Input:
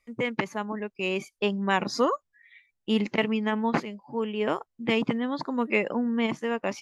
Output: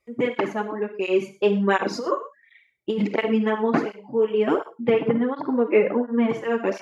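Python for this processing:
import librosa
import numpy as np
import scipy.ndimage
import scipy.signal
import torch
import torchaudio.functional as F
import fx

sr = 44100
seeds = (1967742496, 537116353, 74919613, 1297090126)

y = fx.peak_eq(x, sr, hz=400.0, db=11.5, octaves=1.7)
y = fx.room_early_taps(y, sr, ms=(50, 65), db=(-13.5, -16.5))
y = fx.over_compress(y, sr, threshold_db=-18.0, ratio=-0.5, at=(1.92, 3.1), fade=0.02)
y = fx.rev_gated(y, sr, seeds[0], gate_ms=140, shape='flat', drr_db=9.5)
y = fx.dynamic_eq(y, sr, hz=1500.0, q=2.0, threshold_db=-42.0, ratio=4.0, max_db=5)
y = fx.lowpass(y, sr, hz=2300.0, slope=12, at=(4.89, 6.29), fade=0.02)
y = fx.flanger_cancel(y, sr, hz=1.4, depth_ms=4.5)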